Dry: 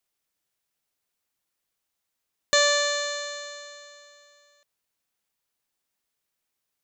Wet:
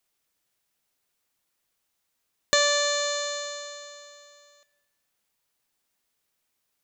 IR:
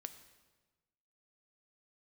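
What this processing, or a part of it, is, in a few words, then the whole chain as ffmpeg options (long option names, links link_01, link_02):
ducked reverb: -filter_complex "[0:a]asplit=3[link_01][link_02][link_03];[1:a]atrim=start_sample=2205[link_04];[link_02][link_04]afir=irnorm=-1:irlink=0[link_05];[link_03]apad=whole_len=301548[link_06];[link_05][link_06]sidechaincompress=threshold=-28dB:ratio=8:attack=37:release=299,volume=10dB[link_07];[link_01][link_07]amix=inputs=2:normalize=0,volume=-5dB"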